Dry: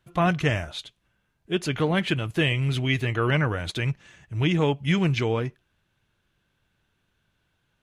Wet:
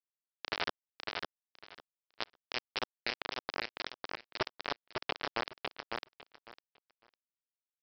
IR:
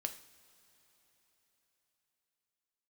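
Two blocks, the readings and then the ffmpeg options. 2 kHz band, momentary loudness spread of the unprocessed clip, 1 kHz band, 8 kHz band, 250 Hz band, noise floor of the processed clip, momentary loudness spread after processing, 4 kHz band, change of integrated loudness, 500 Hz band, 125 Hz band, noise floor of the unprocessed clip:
-11.0 dB, 7 LU, -9.5 dB, -15.5 dB, -24.5 dB, under -85 dBFS, 19 LU, -7.5 dB, -14.5 dB, -16.5 dB, -33.5 dB, -73 dBFS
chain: -filter_complex "[0:a]areverse,acompressor=threshold=-35dB:ratio=12,areverse,alimiter=level_in=11dB:limit=-24dB:level=0:latency=1:release=71,volume=-11dB,lowshelf=f=110:g=8[a];[1:a]atrim=start_sample=2205,asetrate=57330,aresample=44100[b];[a][b]afir=irnorm=-1:irlink=0,aresample=11025,acrusher=bits=5:mix=0:aa=0.000001,aresample=44100,bass=f=250:g=-13,treble=f=4k:g=0,aecho=1:1:553|1106|1659:0.631|0.114|0.0204,volume=12.5dB"

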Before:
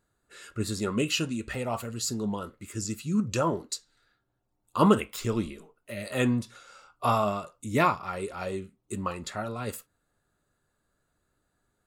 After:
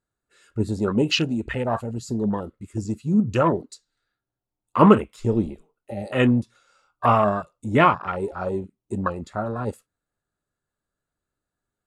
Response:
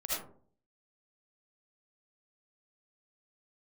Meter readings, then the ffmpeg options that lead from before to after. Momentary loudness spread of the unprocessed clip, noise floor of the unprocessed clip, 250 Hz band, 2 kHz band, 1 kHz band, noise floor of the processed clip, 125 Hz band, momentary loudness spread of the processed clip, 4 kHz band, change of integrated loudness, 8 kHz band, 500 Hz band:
13 LU, -77 dBFS, +7.0 dB, +5.5 dB, +7.0 dB, under -85 dBFS, +7.0 dB, 14 LU, +4.0 dB, +6.5 dB, n/a, +7.0 dB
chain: -af "lowpass=f=11k:w=0.5412,lowpass=f=11k:w=1.3066,afwtdn=0.02,volume=7dB"

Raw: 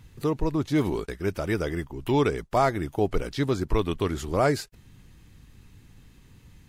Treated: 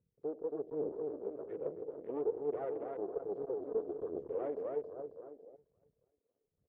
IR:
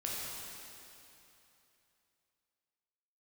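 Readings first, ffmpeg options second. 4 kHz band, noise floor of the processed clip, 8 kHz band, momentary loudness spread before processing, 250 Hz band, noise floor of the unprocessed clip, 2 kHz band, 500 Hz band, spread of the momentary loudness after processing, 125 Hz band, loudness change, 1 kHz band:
under -40 dB, -85 dBFS, under -35 dB, 6 LU, -17.5 dB, -54 dBFS, under -25 dB, -9.0 dB, 9 LU, -30.0 dB, -13.0 dB, -20.0 dB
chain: -filter_complex "[0:a]highpass=f=45:p=1,aecho=1:1:273|546|819|1092|1365|1638|1911|2184:0.631|0.353|0.198|0.111|0.0621|0.0347|0.0195|0.0109,asplit=2[a][b];[b]asoftclip=type=hard:threshold=-20dB,volume=-6dB[c];[a][c]amix=inputs=2:normalize=0,aphaser=in_gain=1:out_gain=1:delay=4.5:decay=0.5:speed=1.2:type=triangular,asplit=2[d][e];[1:a]atrim=start_sample=2205,afade=t=out:st=0.25:d=0.01,atrim=end_sample=11466,lowpass=f=1.7k:w=0.5412,lowpass=f=1.7k:w=1.3066[f];[e][f]afir=irnorm=-1:irlink=0,volume=-14dB[g];[d][g]amix=inputs=2:normalize=0,aeval=exprs='max(val(0),0)':c=same,afwtdn=0.0282,lowpass=f=460:t=q:w=4.9,aderivative,volume=2.5dB"

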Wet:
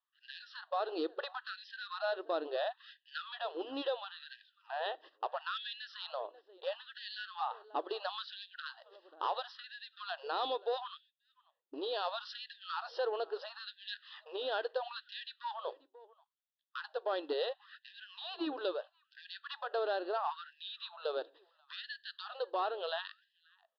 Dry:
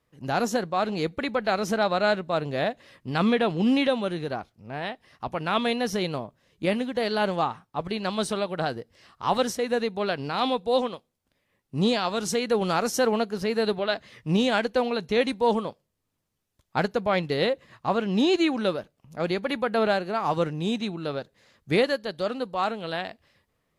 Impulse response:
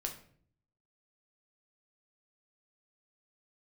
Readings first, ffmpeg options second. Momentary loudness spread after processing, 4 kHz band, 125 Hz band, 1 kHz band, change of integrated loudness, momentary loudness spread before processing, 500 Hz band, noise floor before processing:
12 LU, -9.5 dB, under -40 dB, -11.0 dB, -13.5 dB, 10 LU, -13.0 dB, -78 dBFS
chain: -filter_complex "[0:a]aemphasis=mode=reproduction:type=75kf,agate=range=-18dB:threshold=-51dB:ratio=16:detection=peak,equalizer=f=3.5k:w=2.7:g=7.5,bandreject=f=60:t=h:w=6,bandreject=f=120:t=h:w=6,bandreject=f=180:t=h:w=6,acompressor=threshold=-36dB:ratio=4,asoftclip=type=tanh:threshold=-29.5dB,asuperstop=centerf=2200:order=4:qfactor=2.8,asplit=2[a][b];[b]adelay=536.4,volume=-23dB,highshelf=f=4k:g=-12.1[c];[a][c]amix=inputs=2:normalize=0,asplit=2[d][e];[1:a]atrim=start_sample=2205,atrim=end_sample=6615[f];[e][f]afir=irnorm=-1:irlink=0,volume=-18.5dB[g];[d][g]amix=inputs=2:normalize=0,aresample=11025,aresample=44100,afftfilt=real='re*gte(b*sr/1024,270*pow(1600/270,0.5+0.5*sin(2*PI*0.74*pts/sr)))':imag='im*gte(b*sr/1024,270*pow(1600/270,0.5+0.5*sin(2*PI*0.74*pts/sr)))':win_size=1024:overlap=0.75,volume=4dB"

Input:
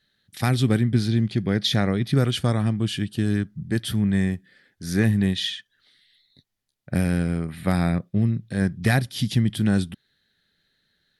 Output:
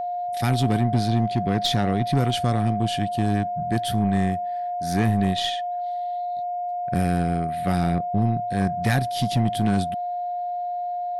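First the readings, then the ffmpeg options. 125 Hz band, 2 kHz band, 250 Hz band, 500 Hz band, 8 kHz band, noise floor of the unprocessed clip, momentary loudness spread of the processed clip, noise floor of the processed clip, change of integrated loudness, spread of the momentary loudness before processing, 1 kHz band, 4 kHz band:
-1.0 dB, -2.0 dB, -1.0 dB, +4.5 dB, -0.5 dB, -74 dBFS, 7 LU, -28 dBFS, -0.5 dB, 7 LU, +13.5 dB, -0.5 dB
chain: -af "aeval=exprs='0.447*(cos(1*acos(clip(val(0)/0.447,-1,1)))-cos(1*PI/2))+0.0282*(cos(6*acos(clip(val(0)/0.447,-1,1)))-cos(6*PI/2))':c=same,aeval=exprs='val(0)+0.0562*sin(2*PI*710*n/s)':c=same,asoftclip=type=tanh:threshold=-11dB"

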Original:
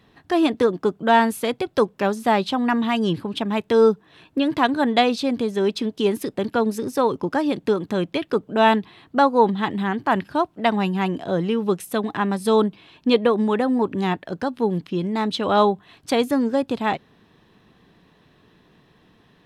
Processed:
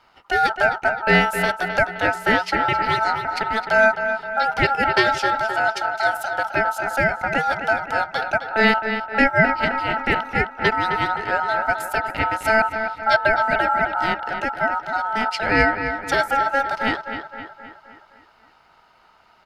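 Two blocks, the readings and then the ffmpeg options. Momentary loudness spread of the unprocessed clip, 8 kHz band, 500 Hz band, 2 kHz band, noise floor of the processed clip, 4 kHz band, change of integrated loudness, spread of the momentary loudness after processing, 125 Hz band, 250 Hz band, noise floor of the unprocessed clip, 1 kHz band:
7 LU, +0.5 dB, -3.0 dB, +11.5 dB, -55 dBFS, +0.5 dB, +1.5 dB, 6 LU, -1.0 dB, -7.5 dB, -58 dBFS, +3.0 dB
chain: -filter_complex "[0:a]asplit=2[a][b];[b]adelay=261,lowpass=f=2.6k:p=1,volume=-8dB,asplit=2[c][d];[d]adelay=261,lowpass=f=2.6k:p=1,volume=0.54,asplit=2[e][f];[f]adelay=261,lowpass=f=2.6k:p=1,volume=0.54,asplit=2[g][h];[h]adelay=261,lowpass=f=2.6k:p=1,volume=0.54,asplit=2[i][j];[j]adelay=261,lowpass=f=2.6k:p=1,volume=0.54,asplit=2[k][l];[l]adelay=261,lowpass=f=2.6k:p=1,volume=0.54[m];[a][c][e][g][i][k][m]amix=inputs=7:normalize=0,aeval=exprs='val(0)*sin(2*PI*1100*n/s)':c=same,volume=2.5dB"

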